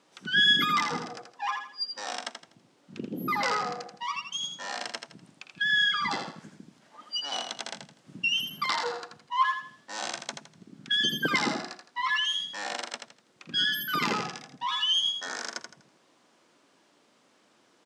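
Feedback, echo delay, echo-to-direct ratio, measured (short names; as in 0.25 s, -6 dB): 31%, 82 ms, -6.0 dB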